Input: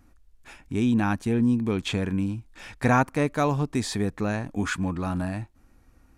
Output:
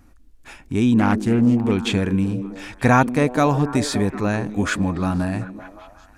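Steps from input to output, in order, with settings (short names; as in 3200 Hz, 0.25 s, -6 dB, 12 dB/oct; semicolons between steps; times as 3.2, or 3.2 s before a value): delay with a stepping band-pass 0.187 s, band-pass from 260 Hz, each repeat 0.7 oct, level -7 dB; 0.99–1.72 Doppler distortion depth 0.28 ms; gain +5.5 dB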